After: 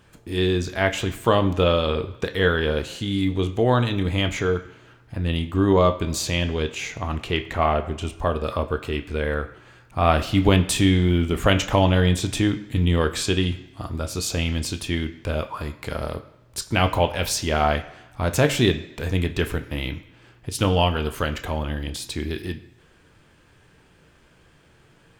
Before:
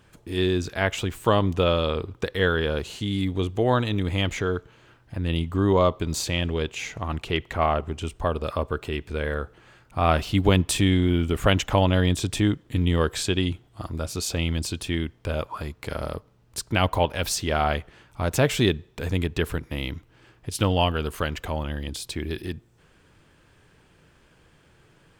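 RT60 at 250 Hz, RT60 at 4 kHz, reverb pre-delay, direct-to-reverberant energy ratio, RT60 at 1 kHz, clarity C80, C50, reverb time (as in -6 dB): 0.95 s, 0.95 s, 13 ms, 7.0 dB, 1.0 s, 16.0 dB, 14.0 dB, 1.0 s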